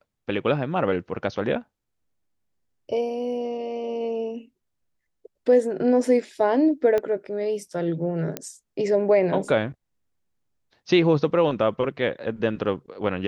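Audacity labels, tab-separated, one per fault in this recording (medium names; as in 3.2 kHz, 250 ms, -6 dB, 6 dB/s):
6.980000	6.980000	pop -14 dBFS
8.370000	8.370000	pop -12 dBFS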